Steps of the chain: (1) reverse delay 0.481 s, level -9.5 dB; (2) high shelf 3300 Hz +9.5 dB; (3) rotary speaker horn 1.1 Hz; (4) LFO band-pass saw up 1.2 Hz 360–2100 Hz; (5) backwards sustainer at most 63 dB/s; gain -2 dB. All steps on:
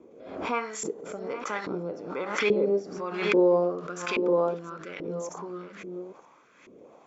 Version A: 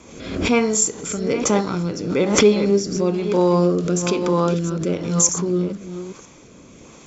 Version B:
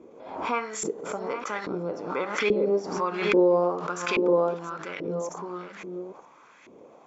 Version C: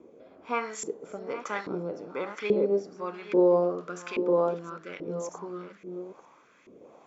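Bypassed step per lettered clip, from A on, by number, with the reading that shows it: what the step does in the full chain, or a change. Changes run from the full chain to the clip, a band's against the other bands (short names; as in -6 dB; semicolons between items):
4, 125 Hz band +11.5 dB; 3, 1 kHz band +2.5 dB; 5, 2 kHz band -5.0 dB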